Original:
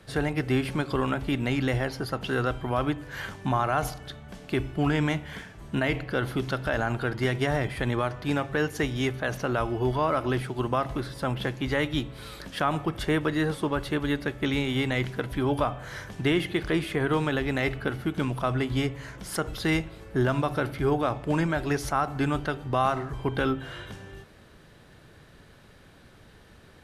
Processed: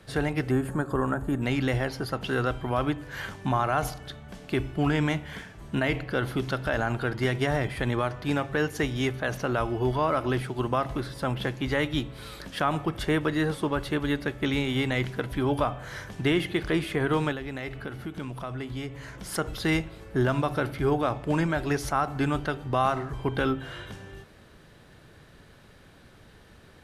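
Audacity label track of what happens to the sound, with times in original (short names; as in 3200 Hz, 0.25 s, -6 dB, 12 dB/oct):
0.500000	1.420000	spectral gain 1900–6400 Hz -16 dB
17.320000	19.210000	compressor 2:1, threshold -37 dBFS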